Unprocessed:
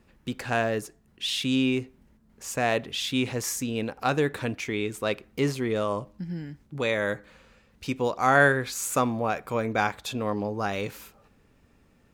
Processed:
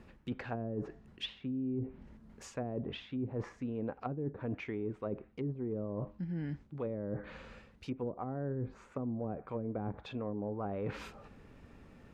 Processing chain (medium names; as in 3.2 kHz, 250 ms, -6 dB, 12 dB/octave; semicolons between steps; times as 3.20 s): low-pass that closes with the level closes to 330 Hz, closed at -22.5 dBFS; treble shelf 4.8 kHz -12 dB; reverse; compression 6:1, threshold -41 dBFS, peak gain reduction 17.5 dB; reverse; trim +5.5 dB